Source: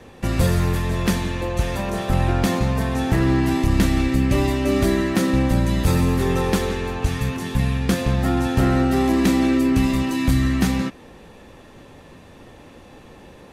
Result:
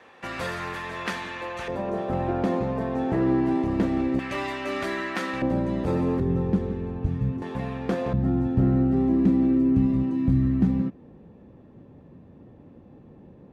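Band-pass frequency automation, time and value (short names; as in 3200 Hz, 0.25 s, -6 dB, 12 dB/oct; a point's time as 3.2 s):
band-pass, Q 0.88
1500 Hz
from 1.68 s 460 Hz
from 4.19 s 1500 Hz
from 5.42 s 440 Hz
from 6.2 s 160 Hz
from 7.42 s 580 Hz
from 8.13 s 170 Hz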